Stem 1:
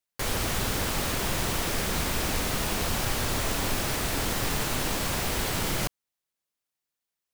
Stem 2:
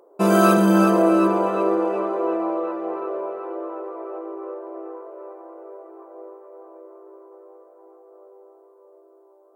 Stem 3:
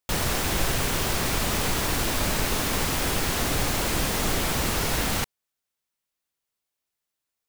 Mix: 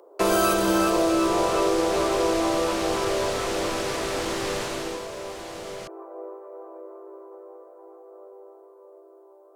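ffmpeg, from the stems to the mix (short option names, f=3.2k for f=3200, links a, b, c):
-filter_complex "[0:a]lowpass=7.9k,lowshelf=f=160:g=-9.5,afade=t=out:st=4.59:d=0.48:silence=0.298538[a];[1:a]highpass=f=290:w=0.5412,highpass=f=290:w=1.3066,volume=2.5dB[b];[2:a]bandpass=f=6.6k:t=q:w=1.9:csg=0,adelay=500,volume=-20dB[c];[a][b][c]amix=inputs=3:normalize=0,acrossover=split=160|3000[d][e][f];[e]acompressor=threshold=-19dB:ratio=6[g];[d][g][f]amix=inputs=3:normalize=0"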